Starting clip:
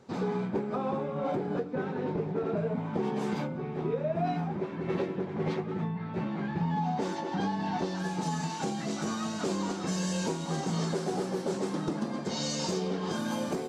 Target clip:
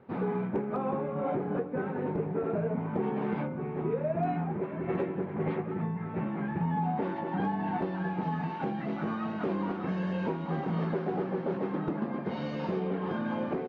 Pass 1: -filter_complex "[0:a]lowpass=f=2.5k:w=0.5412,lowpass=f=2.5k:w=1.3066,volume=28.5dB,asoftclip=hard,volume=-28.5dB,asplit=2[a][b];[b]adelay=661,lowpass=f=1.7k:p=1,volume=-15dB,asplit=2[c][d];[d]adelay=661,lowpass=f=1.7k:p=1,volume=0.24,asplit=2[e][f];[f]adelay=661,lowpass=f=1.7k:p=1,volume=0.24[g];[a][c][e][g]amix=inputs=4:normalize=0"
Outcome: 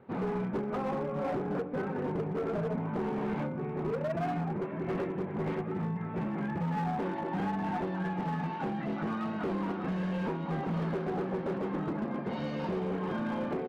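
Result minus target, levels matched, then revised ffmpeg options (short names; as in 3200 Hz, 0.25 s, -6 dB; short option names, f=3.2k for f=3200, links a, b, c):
overloaded stage: distortion +32 dB
-filter_complex "[0:a]lowpass=f=2.5k:w=0.5412,lowpass=f=2.5k:w=1.3066,volume=20.5dB,asoftclip=hard,volume=-20.5dB,asplit=2[a][b];[b]adelay=661,lowpass=f=1.7k:p=1,volume=-15dB,asplit=2[c][d];[d]adelay=661,lowpass=f=1.7k:p=1,volume=0.24,asplit=2[e][f];[f]adelay=661,lowpass=f=1.7k:p=1,volume=0.24[g];[a][c][e][g]amix=inputs=4:normalize=0"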